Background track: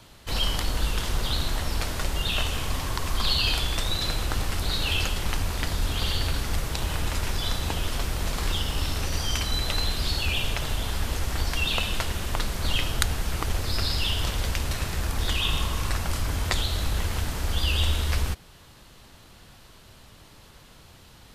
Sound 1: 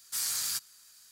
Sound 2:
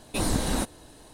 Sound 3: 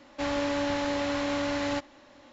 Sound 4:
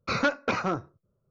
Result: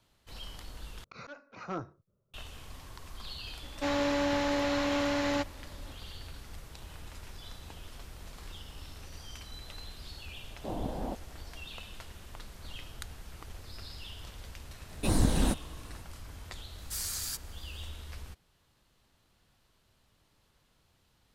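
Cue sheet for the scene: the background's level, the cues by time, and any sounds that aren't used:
background track -19 dB
1.04 replace with 4 -3 dB + auto swell 0.418 s
3.63 add 3 -0.5 dB
10.5 add 2 -10.5 dB + synth low-pass 740 Hz, resonance Q 2.2
14.89 add 2 -5 dB + low shelf 280 Hz +8 dB
16.78 add 1 -4.5 dB

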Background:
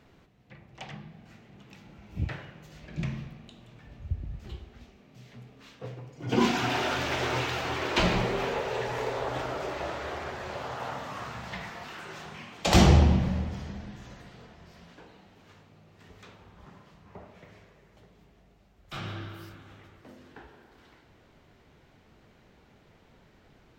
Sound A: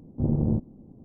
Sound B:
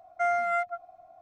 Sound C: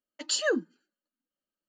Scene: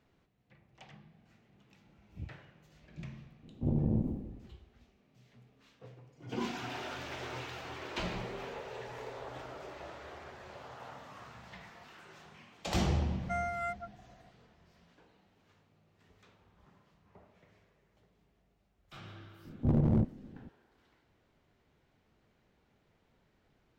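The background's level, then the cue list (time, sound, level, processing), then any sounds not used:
background -12.5 dB
3.43 add A -6.5 dB + sustainer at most 60 dB/s
13.1 add B -10 dB + high shelf 3600 Hz +8 dB
19.45 add A -1.5 dB + overloaded stage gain 19.5 dB
not used: C

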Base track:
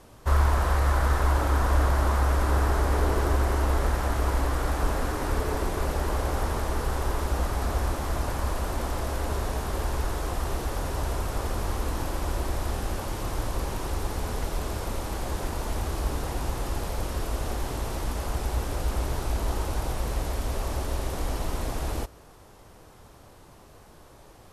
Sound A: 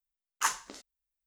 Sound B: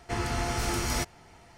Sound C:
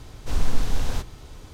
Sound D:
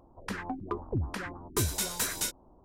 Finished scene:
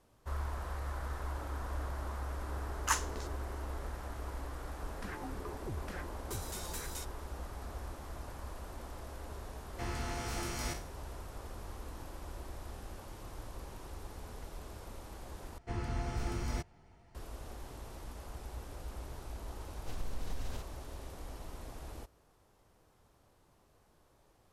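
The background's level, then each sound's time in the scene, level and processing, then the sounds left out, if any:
base track -16.5 dB
2.46 add A -2.5 dB
4.74 add D -6 dB + limiter -29 dBFS
9.69 add B -10.5 dB + spectral trails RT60 0.38 s
15.58 replace with B -11.5 dB + tilt -2 dB/oct
19.6 add C -12.5 dB + compressor, threshold -20 dBFS

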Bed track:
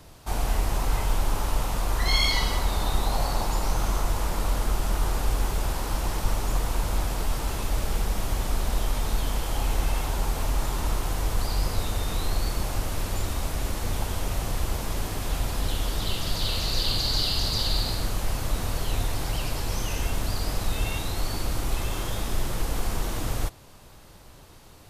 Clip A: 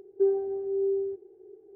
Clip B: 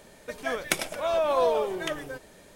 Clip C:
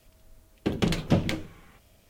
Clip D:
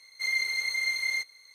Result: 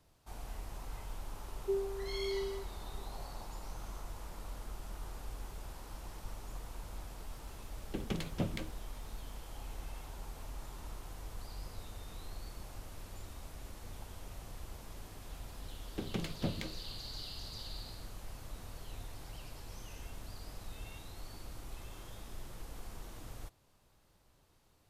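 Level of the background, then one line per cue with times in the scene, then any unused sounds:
bed track -19.5 dB
1.48 add A -10.5 dB
7.28 add C -12.5 dB
15.32 add C -13 dB
not used: B, D

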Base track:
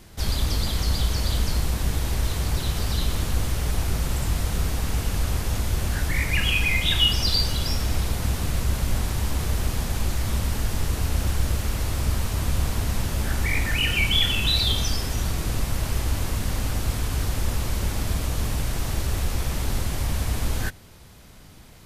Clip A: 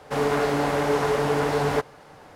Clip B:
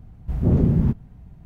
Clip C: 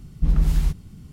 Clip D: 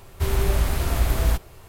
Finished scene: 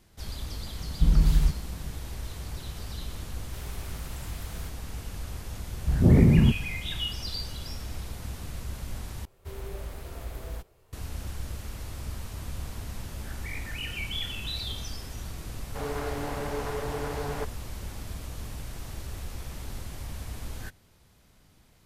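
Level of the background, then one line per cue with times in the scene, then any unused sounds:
base track -12.5 dB
0.79 add C -1.5 dB
3.32 add D -14.5 dB + HPF 1500 Hz 6 dB/oct
5.59 add B -0.5 dB + transient shaper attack +1 dB, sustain +5 dB
9.25 replace with D -17 dB + bell 480 Hz +6.5 dB 0.64 oct
15.64 add A -11 dB

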